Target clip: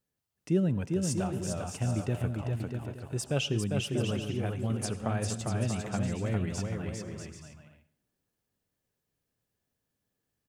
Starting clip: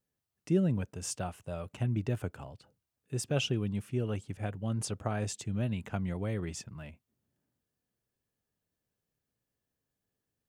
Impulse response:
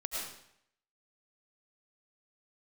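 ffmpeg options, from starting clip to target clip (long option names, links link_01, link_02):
-filter_complex "[0:a]aecho=1:1:400|640|784|870.4|922.2:0.631|0.398|0.251|0.158|0.1,asplit=2[link_01][link_02];[1:a]atrim=start_sample=2205,asetrate=57330,aresample=44100[link_03];[link_02][link_03]afir=irnorm=-1:irlink=0,volume=-15.5dB[link_04];[link_01][link_04]amix=inputs=2:normalize=0"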